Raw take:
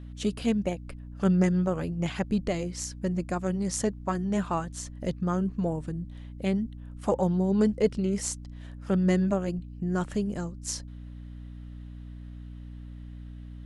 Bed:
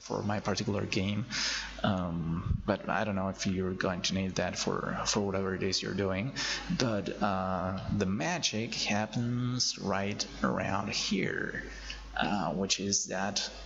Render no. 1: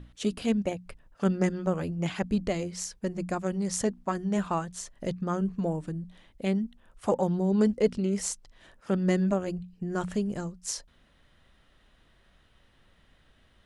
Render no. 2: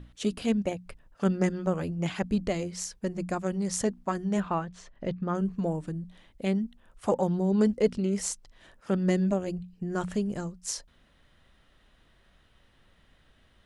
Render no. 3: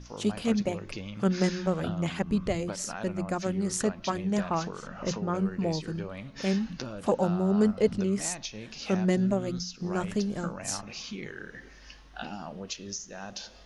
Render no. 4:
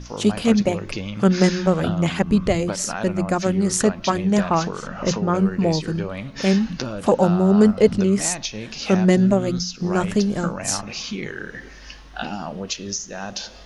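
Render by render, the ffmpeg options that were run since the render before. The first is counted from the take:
-af "bandreject=f=60:t=h:w=6,bandreject=f=120:t=h:w=6,bandreject=f=180:t=h:w=6,bandreject=f=240:t=h:w=6,bandreject=f=300:t=h:w=6"
-filter_complex "[0:a]asettb=1/sr,asplit=3[a][b][c];[a]atrim=end=4.404[d];[b]atrim=start=4.4:end=5.35,asetpts=PTS-STARTPTS,afade=t=in:d=0.004:c=qsin,afade=t=out:st=0.946:d=0.004:c=qsin,lowpass=3.3k[e];[c]atrim=start=5.346[f];[d][e]acrossfade=d=0.004:c1=hsin:c2=qsin[g];[g][f]acrossfade=d=0.004:c1=qsin:c2=hsin,asettb=1/sr,asplit=3[h][i][j];[h]atrim=end=9.104[k];[i]atrim=start=9.1:end=9.54,asetpts=PTS-STARTPTS,afade=t=in:d=0.004:c=qsin,afade=t=out:st=0.436:d=0.004:c=qsin,equalizer=f=1.3k:w=1.6:g=-5.5[l];[j]atrim=start=9.536[m];[k][l]acrossfade=d=0.004:c1=hsin:c2=qsin[n];[n][m]acrossfade=d=0.004:c1=qsin:c2=hsin"
-filter_complex "[1:a]volume=-8dB[a];[0:a][a]amix=inputs=2:normalize=0"
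-af "volume=9.5dB,alimiter=limit=-3dB:level=0:latency=1"

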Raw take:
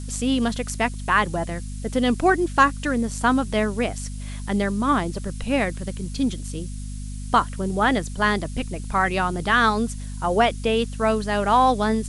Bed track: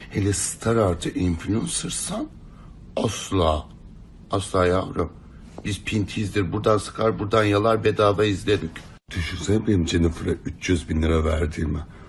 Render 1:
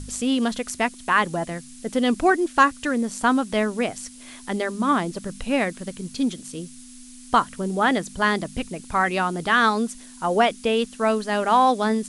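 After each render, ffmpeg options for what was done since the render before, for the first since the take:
-af "bandreject=f=50:t=h:w=4,bandreject=f=100:t=h:w=4,bandreject=f=150:t=h:w=4,bandreject=f=200:t=h:w=4"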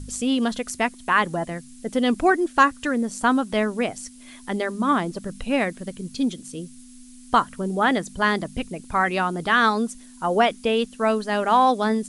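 -af "afftdn=nr=6:nf=-44"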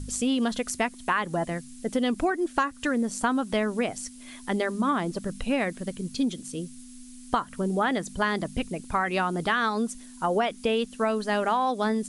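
-af "acompressor=threshold=-21dB:ratio=10"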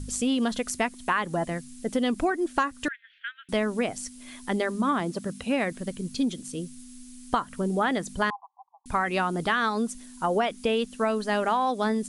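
-filter_complex "[0:a]asettb=1/sr,asplit=3[a][b][c];[a]atrim=end=2.884[d];[b]atrim=start=2.88:end=3.49,asetpts=PTS-STARTPTS,afade=t=in:d=0.004:c=qsin,afade=t=out:st=0.606:d=0.004:c=qsin,asuperpass=centerf=2300:order=12:qfactor=1.2[e];[c]atrim=start=3.486[f];[d][e]acrossfade=d=0.004:c1=hsin:c2=qsin[g];[g][f]acrossfade=d=0.004:c1=qsin:c2=hsin,asettb=1/sr,asplit=3[h][i][j];[h]atrim=end=5.004[k];[i]atrim=start=5:end=5.72,asetpts=PTS-STARTPTS,afade=t=in:d=0.004:c=qsin,afade=t=out:st=0.716:d=0.004:c=qsin,highpass=95[l];[j]atrim=start=5.716[m];[k][l]acrossfade=d=0.004:c1=hsin:c2=qsin[n];[n][m]acrossfade=d=0.004:c1=qsin:c2=hsin,asettb=1/sr,asplit=3[o][p][q];[o]atrim=end=8.304[r];[p]atrim=start=8.3:end=8.86,asetpts=PTS-STARTPTS,afade=t=in:d=0.004:c=qsin,afade=t=out:st=0.556:d=0.004:c=qsin,asuperpass=centerf=920:order=12:qfactor=2.6[s];[q]atrim=start=8.856[t];[r][s]acrossfade=d=0.004:c1=hsin:c2=qsin[u];[u][t]acrossfade=d=0.004:c1=qsin:c2=hsin"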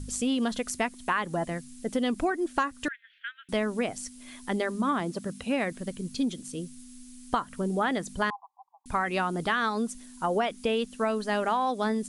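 -af "volume=-2dB"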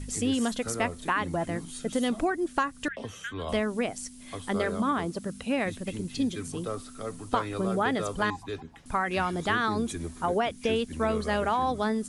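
-filter_complex "[1:a]volume=-15.5dB[a];[0:a][a]amix=inputs=2:normalize=0"

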